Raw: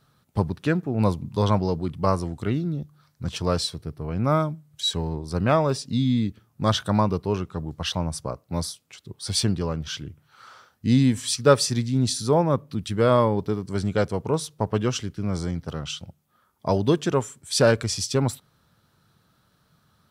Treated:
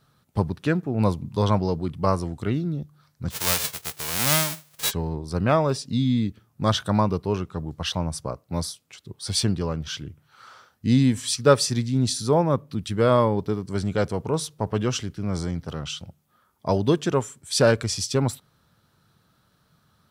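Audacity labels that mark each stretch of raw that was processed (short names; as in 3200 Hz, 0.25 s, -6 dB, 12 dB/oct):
3.300000	4.900000	spectral whitening exponent 0.1
13.790000	16.690000	transient shaper attack -2 dB, sustain +2 dB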